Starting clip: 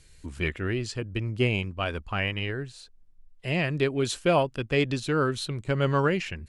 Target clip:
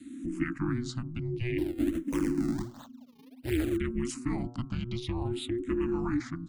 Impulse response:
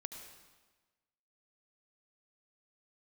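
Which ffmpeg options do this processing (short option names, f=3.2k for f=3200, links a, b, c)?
-filter_complex "[0:a]bandreject=f=121.3:t=h:w=4,bandreject=f=242.6:t=h:w=4,bandreject=f=363.9:t=h:w=4,bandreject=f=485.2:t=h:w=4,bandreject=f=606.5:t=h:w=4,bandreject=f=727.8:t=h:w=4,bandreject=f=849.1:t=h:w=4,bandreject=f=970.4:t=h:w=4,bandreject=f=1.0917k:t=h:w=4,bandreject=f=1.213k:t=h:w=4,bandreject=f=1.3343k:t=h:w=4,bandreject=f=1.4556k:t=h:w=4,bandreject=f=1.5769k:t=h:w=4,bandreject=f=1.6982k:t=h:w=4,bandreject=f=1.8195k:t=h:w=4,aeval=exprs='val(0)*sin(2*PI*120*n/s)':c=same,asettb=1/sr,asplit=3[a][b][c];[a]atrim=end=1.584[d];[b]atrim=start=1.58:end=3.77,asetpts=PTS-STARTPTS,afade=t=in:d=0.004:c=qsin,afade=t=out:st=2.186:d=0.004:c=qsin,acrusher=samples=37:mix=1:aa=0.000001:lfo=1:lforange=59.2:lforate=1.4[e];[c]atrim=start=3.766[f];[d][e]acrossfade=d=0.004:c1=hsin:c2=qsin[g];[g][f]acrossfade=d=0.004:c1=qsin:c2=hsin,equalizer=f=88:t=o:w=0.66:g=10.5,alimiter=limit=-20dB:level=0:latency=1:release=32,lowshelf=f=220:g=8.5,afreqshift=-370,acompressor=threshold=-39dB:ratio=1.5,asplit=2[h][i];[i]afreqshift=-0.55[j];[h][j]amix=inputs=2:normalize=1,volume=4dB"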